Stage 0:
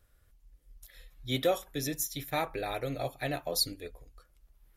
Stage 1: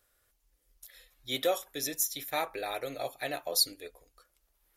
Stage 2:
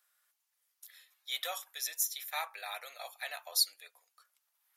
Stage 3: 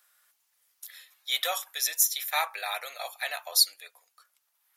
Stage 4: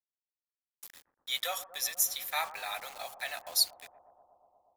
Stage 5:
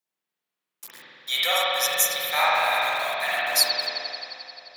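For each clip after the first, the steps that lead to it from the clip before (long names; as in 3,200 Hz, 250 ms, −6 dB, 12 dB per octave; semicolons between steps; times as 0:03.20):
bass and treble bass −15 dB, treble +4 dB
high-pass filter 840 Hz 24 dB per octave; level −2 dB
speech leveller within 3 dB 2 s; level +7.5 dB
bit reduction 7 bits; bucket-brigade delay 119 ms, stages 1,024, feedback 83%, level −14 dB; level −5 dB
high-pass filter 120 Hz 24 dB per octave; spring reverb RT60 2.8 s, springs 48 ms, chirp 40 ms, DRR −8 dB; level +6.5 dB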